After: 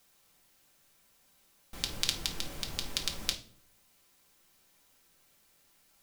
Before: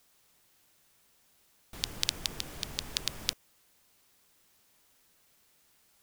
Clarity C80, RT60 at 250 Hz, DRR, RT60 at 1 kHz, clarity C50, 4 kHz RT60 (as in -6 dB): 17.5 dB, 0.75 s, 2.0 dB, 0.45 s, 13.0 dB, 0.35 s